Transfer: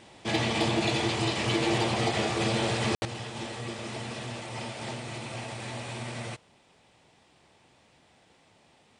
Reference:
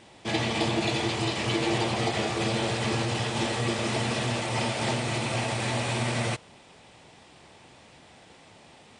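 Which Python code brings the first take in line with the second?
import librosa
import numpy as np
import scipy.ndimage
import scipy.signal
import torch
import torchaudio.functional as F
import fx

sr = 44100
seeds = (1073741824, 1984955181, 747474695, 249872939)

y = fx.fix_declip(x, sr, threshold_db=-17.0)
y = fx.fix_ambience(y, sr, seeds[0], print_start_s=6.58, print_end_s=7.08, start_s=2.95, end_s=3.02)
y = fx.fix_level(y, sr, at_s=3.05, step_db=9.0)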